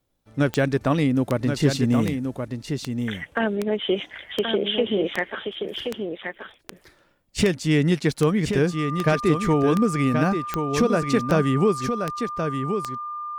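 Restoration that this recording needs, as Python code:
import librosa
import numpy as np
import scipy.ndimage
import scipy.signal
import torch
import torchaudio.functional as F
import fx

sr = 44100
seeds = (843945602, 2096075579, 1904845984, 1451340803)

y = fx.fix_declip(x, sr, threshold_db=-10.0)
y = fx.fix_declick_ar(y, sr, threshold=10.0)
y = fx.notch(y, sr, hz=1200.0, q=30.0)
y = fx.fix_echo_inverse(y, sr, delay_ms=1077, level_db=-6.5)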